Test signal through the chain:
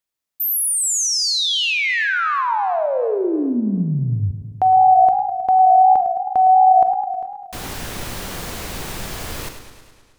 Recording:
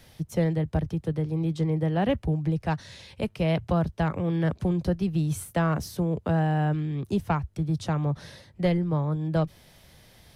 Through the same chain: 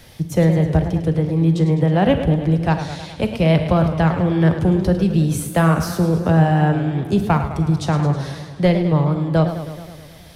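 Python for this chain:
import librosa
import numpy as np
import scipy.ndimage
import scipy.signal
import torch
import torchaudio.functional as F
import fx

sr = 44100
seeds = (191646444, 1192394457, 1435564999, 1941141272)

y = fx.rev_schroeder(x, sr, rt60_s=0.56, comb_ms=33, drr_db=10.0)
y = fx.echo_warbled(y, sr, ms=106, feedback_pct=67, rate_hz=2.8, cents=145, wet_db=-11)
y = y * librosa.db_to_amplitude(8.5)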